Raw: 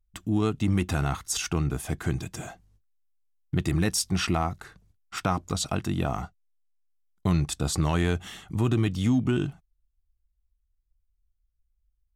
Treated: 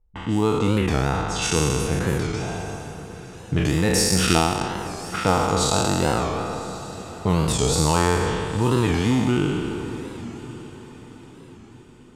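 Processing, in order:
peak hold with a decay on every bin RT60 2.14 s
0:00.79–0:01.42: high-shelf EQ 4,000 Hz −7 dB
0:04.11–0:05.16: transient designer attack +10 dB, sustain −9 dB
low-pass that shuts in the quiet parts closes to 1,300 Hz, open at −18.5 dBFS
in parallel at −2 dB: downward compressor, threshold −34 dBFS, peak gain reduction 18 dB
on the sum: hollow resonant body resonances 480/880 Hz, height 10 dB, ringing for 45 ms
on a send: feedback delay with all-pass diffusion 1,044 ms, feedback 40%, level −15.5 dB
on the sum: wow of a warped record 45 rpm, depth 160 cents

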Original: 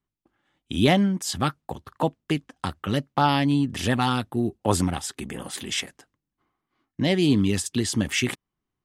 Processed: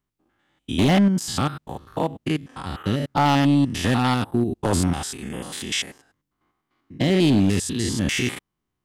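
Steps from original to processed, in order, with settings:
spectrum averaged block by block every 100 ms
hard clipping −17.5 dBFS, distortion −15 dB
level +5 dB

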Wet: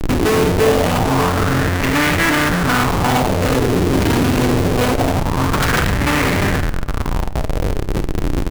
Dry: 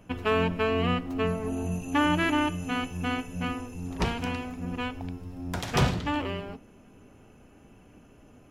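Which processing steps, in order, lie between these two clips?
sub-octave generator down 1 octave, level −3 dB
low-shelf EQ 100 Hz +8 dB
in parallel at −1.5 dB: compressor whose output falls as the input rises −34 dBFS, ratio −1
on the sum: comparator with hysteresis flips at −36 dBFS
ambience of single reflections 31 ms −15.5 dB, 52 ms −13 dB
convolution reverb RT60 1.7 s, pre-delay 7 ms, DRR 16.5 dB
auto-filter bell 0.24 Hz 320–2,000 Hz +9 dB
level +7.5 dB

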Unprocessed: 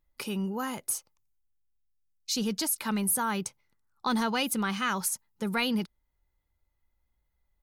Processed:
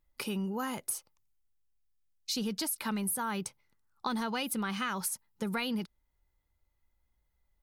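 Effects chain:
dynamic equaliser 6,700 Hz, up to −5 dB, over −51 dBFS, Q 2.9
downward compressor, threshold −30 dBFS, peak gain reduction 6.5 dB

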